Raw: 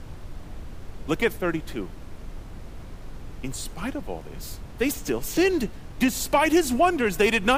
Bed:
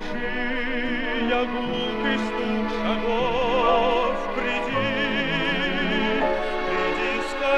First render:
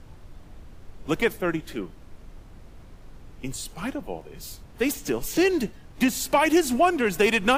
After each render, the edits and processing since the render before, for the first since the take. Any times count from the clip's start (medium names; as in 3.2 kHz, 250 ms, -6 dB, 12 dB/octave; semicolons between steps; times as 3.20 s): noise print and reduce 7 dB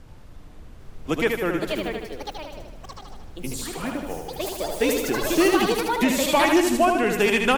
ever faster or slower copies 792 ms, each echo +5 st, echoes 3, each echo -6 dB; feedback delay 77 ms, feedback 56%, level -5 dB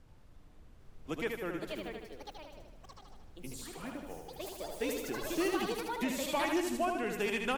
trim -13.5 dB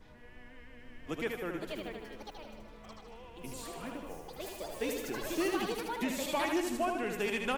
add bed -29 dB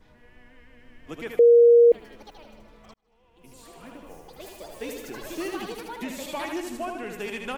1.39–1.92 s: bleep 472 Hz -10.5 dBFS; 2.94–4.19 s: fade in